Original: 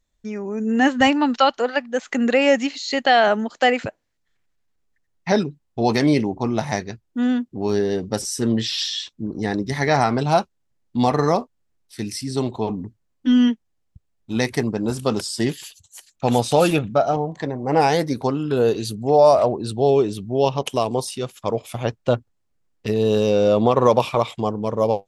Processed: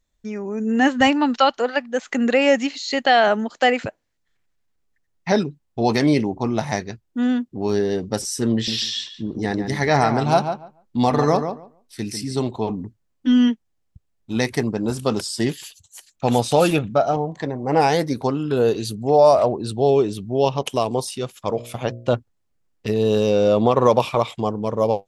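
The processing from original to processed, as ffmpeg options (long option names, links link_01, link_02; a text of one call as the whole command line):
ffmpeg -i in.wav -filter_complex "[0:a]asettb=1/sr,asplit=3[link_01][link_02][link_03];[link_01]atrim=end=8.534[link_04];[link_02]atrim=start=8.53:end=12.4,asetpts=PTS-STARTPTS,afade=type=in:duration=0.004:curve=qsin,afade=type=out:start_time=3.866:duration=0.004:curve=qsin,asplit=2[link_05][link_06];[link_06]adelay=144,lowpass=frequency=2200:poles=1,volume=-7.5dB,asplit=2[link_07][link_08];[link_08]adelay=144,lowpass=frequency=2200:poles=1,volume=0.16,asplit=2[link_09][link_10];[link_10]adelay=144,lowpass=frequency=2200:poles=1,volume=0.16[link_11];[link_05][link_07][link_09][link_11]amix=inputs=4:normalize=0,atrim=end_sample=170667[link_12];[link_03]atrim=start=12.396[link_13];[link_04][link_12]acrossfade=duration=0.004:curve1=hsin:curve2=qsin[link_14];[link_14][link_13]acrossfade=duration=0.004:curve1=qsin:curve2=hsin,asettb=1/sr,asplit=3[link_15][link_16][link_17];[link_15]atrim=end=21.334[link_18];[link_16]atrim=start=21.33:end=22.13,asetpts=PTS-STARTPTS,afade=type=in:duration=0.004:curve=qsin,afade=type=out:start_time=0.796:duration=0.004:curve=qsin,bandreject=frequency=59.31:width_type=h:width=4,bandreject=frequency=118.62:width_type=h:width=4,bandreject=frequency=177.93:width_type=h:width=4,bandreject=frequency=237.24:width_type=h:width=4,bandreject=frequency=296.55:width_type=h:width=4,bandreject=frequency=355.86:width_type=h:width=4,bandreject=frequency=415.17:width_type=h:width=4,bandreject=frequency=474.48:width_type=h:width=4,bandreject=frequency=533.79:width_type=h:width=4,bandreject=frequency=593.1:width_type=h:width=4,bandreject=frequency=652.41:width_type=h:width=4[link_19];[link_17]atrim=start=22.126[link_20];[link_18][link_19]acrossfade=duration=0.004:curve1=hsin:curve2=qsin[link_21];[link_21][link_20]acrossfade=duration=0.004:curve1=qsin:curve2=hsin" out.wav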